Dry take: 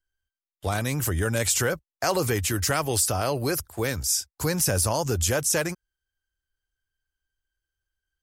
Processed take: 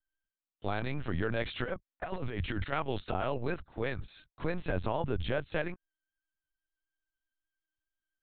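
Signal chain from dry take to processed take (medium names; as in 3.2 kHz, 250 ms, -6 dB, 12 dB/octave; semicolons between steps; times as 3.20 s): 1.64–2.72 s: compressor with a negative ratio -27 dBFS, ratio -0.5; LPC vocoder at 8 kHz pitch kept; trim -6.5 dB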